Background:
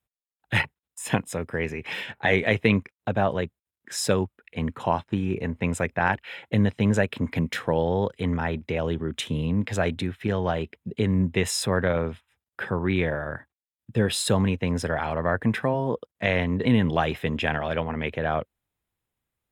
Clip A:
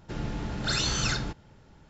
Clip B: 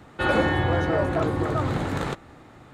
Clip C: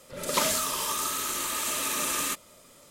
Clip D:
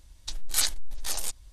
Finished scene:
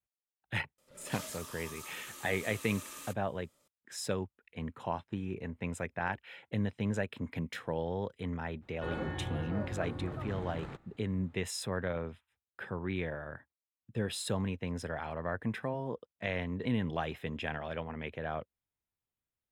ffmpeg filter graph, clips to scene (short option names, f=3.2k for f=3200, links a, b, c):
-filter_complex "[0:a]volume=-11.5dB[a];[2:a]bass=f=250:g=5,treble=f=4k:g=-6[b];[3:a]atrim=end=2.9,asetpts=PTS-STARTPTS,volume=-18dB,afade=t=in:d=0.004:c=hsin,afade=t=out:st=2.896:d=0.004:c=hsin,adelay=780[c];[b]atrim=end=2.73,asetpts=PTS-STARTPTS,volume=-18dB,afade=t=in:d=0.004:c=hsin,afade=t=out:st=2.726:d=0.004:c=hsin,adelay=8620[d];[a][c][d]amix=inputs=3:normalize=0"